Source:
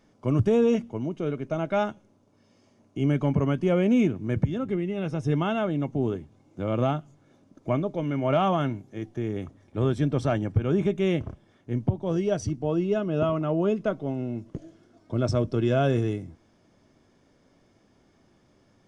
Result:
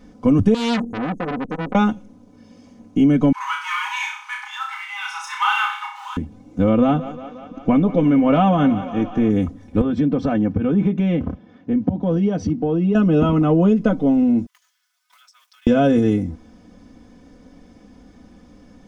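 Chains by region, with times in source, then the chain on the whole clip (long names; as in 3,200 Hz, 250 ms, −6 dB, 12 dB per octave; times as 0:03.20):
0:00.54–0:01.75: inverse Chebyshev band-stop filter 1,300–2,800 Hz, stop band 70 dB + saturating transformer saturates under 2,900 Hz
0:03.32–0:06.17: leveller curve on the samples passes 1 + linear-phase brick-wall high-pass 800 Hz + flutter between parallel walls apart 5.4 metres, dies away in 0.53 s
0:06.69–0:09.30: low-pass filter 4,800 Hz + feedback echo with a high-pass in the loop 178 ms, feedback 75%, high-pass 320 Hz, level −16 dB
0:09.81–0:12.95: high-pass filter 110 Hz + downward compressor 2.5 to 1, threshold −30 dBFS + high-frequency loss of the air 180 metres
0:14.46–0:15.67: mu-law and A-law mismatch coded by A + Bessel high-pass filter 2,000 Hz, order 8 + downward compressor 10 to 1, threshold −58 dBFS
whole clip: low-shelf EQ 320 Hz +10.5 dB; comb filter 4 ms, depth 94%; downward compressor, threshold −18 dBFS; level +6.5 dB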